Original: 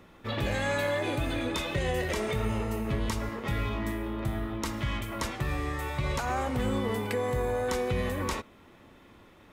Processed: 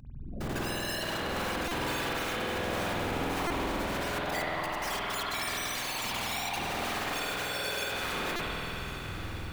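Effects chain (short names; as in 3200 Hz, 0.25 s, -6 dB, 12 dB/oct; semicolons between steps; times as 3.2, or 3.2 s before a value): median filter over 9 samples; 4.18–6.58 Chebyshev band-pass 740–5600 Hz, order 3; compressor 6:1, threshold -34 dBFS, peak gain reduction 9 dB; limiter -31 dBFS, peak gain reduction 7 dB; AGC gain up to 14 dB; added noise pink -37 dBFS; loudest bins only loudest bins 2; wrapped overs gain 33.5 dB; whisperiser; diffused feedback echo 1.029 s, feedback 40%, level -11 dB; spring tank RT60 3.8 s, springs 48 ms, chirp 25 ms, DRR -5 dB; stuck buffer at 1.68/3.47/8.36, samples 128, times 10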